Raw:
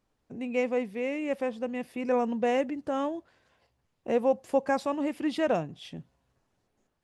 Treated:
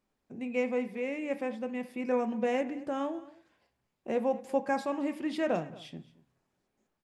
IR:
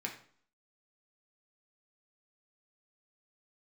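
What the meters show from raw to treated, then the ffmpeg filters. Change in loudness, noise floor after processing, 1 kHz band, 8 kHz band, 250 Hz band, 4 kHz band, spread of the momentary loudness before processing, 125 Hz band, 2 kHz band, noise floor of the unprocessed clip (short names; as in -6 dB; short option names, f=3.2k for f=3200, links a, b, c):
-3.0 dB, -82 dBFS, -3.5 dB, n/a, -2.5 dB, -4.0 dB, 14 LU, -3.5 dB, -2.0 dB, -77 dBFS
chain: -filter_complex "[0:a]aecho=1:1:224:0.1,asplit=2[a][b];[1:a]atrim=start_sample=2205[c];[b][c]afir=irnorm=-1:irlink=0,volume=-3.5dB[d];[a][d]amix=inputs=2:normalize=0,volume=-7dB"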